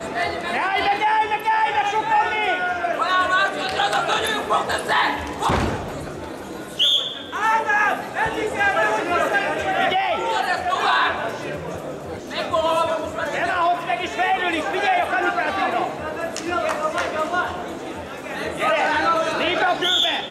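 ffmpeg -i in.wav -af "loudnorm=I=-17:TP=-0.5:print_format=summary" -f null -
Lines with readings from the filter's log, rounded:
Input Integrated:    -20.8 LUFS
Input True Peak:      -7.8 dBTP
Input LRA:             2.9 LU
Input Threshold:     -31.1 LUFS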